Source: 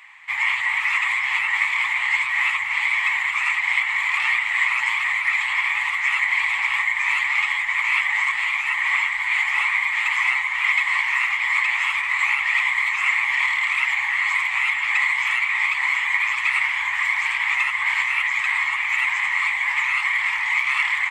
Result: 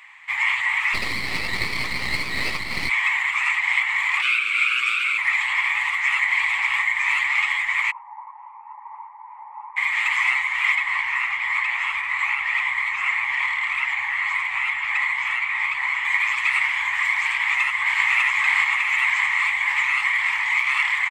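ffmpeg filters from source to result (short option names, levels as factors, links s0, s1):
-filter_complex "[0:a]asplit=3[s0][s1][s2];[s0]afade=t=out:st=0.93:d=0.02[s3];[s1]aeval=exprs='max(val(0),0)':c=same,afade=t=in:st=0.93:d=0.02,afade=t=out:st=2.88:d=0.02[s4];[s2]afade=t=in:st=2.88:d=0.02[s5];[s3][s4][s5]amix=inputs=3:normalize=0,asplit=3[s6][s7][s8];[s6]afade=t=out:st=4.21:d=0.02[s9];[s7]afreqshift=290,afade=t=in:st=4.21:d=0.02,afade=t=out:st=5.17:d=0.02[s10];[s8]afade=t=in:st=5.17:d=0.02[s11];[s9][s10][s11]amix=inputs=3:normalize=0,asplit=3[s12][s13][s14];[s12]afade=t=out:st=7.9:d=0.02[s15];[s13]asuperpass=centerf=890:order=4:qfactor=5.2,afade=t=in:st=7.9:d=0.02,afade=t=out:st=9.76:d=0.02[s16];[s14]afade=t=in:st=9.76:d=0.02[s17];[s15][s16][s17]amix=inputs=3:normalize=0,asettb=1/sr,asplit=3[s18][s19][s20];[s18]atrim=end=10.754[s21];[s19]atrim=start=10.75:end=16.05,asetpts=PTS-STARTPTS,afade=t=in:d=0.004:c=qsin,afade=t=out:st=5.296:d=0.004:c=qsin,highshelf=f=3300:g=-9[s22];[s20]atrim=start=16.046[s23];[s21][s22]acrossfade=d=0.004:c1=hsin:c2=qsin[s24];[s24][s23]acrossfade=d=0.004:c1=qsin:c2=hsin,asplit=2[s25][s26];[s26]afade=t=in:st=17.38:d=0.01,afade=t=out:st=18.04:d=0.01,aecho=0:1:600|1200|1800|2400|3000|3600|4200|4800|5400|6000|6600:0.841395|0.546907|0.355489|0.231068|0.150194|0.0976263|0.0634571|0.0412471|0.0268106|0.0174269|0.0113275[s27];[s25][s27]amix=inputs=2:normalize=0"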